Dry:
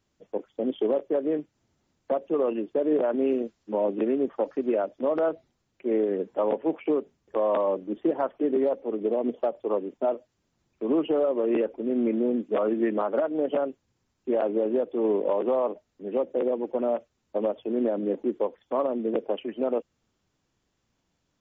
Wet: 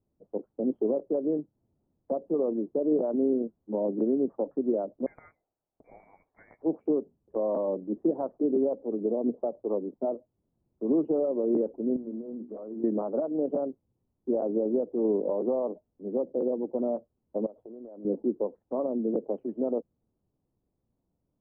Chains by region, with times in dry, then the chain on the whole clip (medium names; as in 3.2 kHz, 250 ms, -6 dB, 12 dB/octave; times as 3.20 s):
5.06–6.62 s: high-pass 690 Hz + peaking EQ 2 kHz +7 dB 0.27 oct + frequency inversion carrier 2.7 kHz
11.96–12.84 s: block-companded coder 5-bit + compression 12:1, threshold -32 dBFS + hum notches 60/120/180/240/300/360/420 Hz
17.46–18.05 s: peaking EQ 200 Hz -7.5 dB 2.3 oct + compression, threshold -38 dBFS
whole clip: Bessel low-pass 570 Hz, order 4; dynamic bell 190 Hz, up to +4 dB, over -42 dBFS, Q 1; trim -1.5 dB